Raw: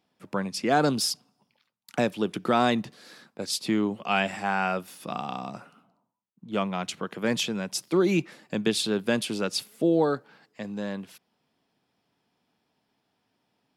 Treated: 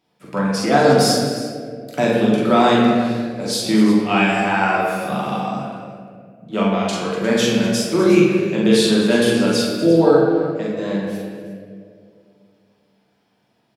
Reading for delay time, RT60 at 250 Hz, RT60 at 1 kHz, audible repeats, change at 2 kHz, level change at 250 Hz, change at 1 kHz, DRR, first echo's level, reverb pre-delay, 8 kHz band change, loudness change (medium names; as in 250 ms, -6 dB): 42 ms, 2.7 s, 1.8 s, 2, +9.0 dB, +12.0 dB, +9.0 dB, -6.5 dB, -2.5 dB, 3 ms, +7.5 dB, +10.5 dB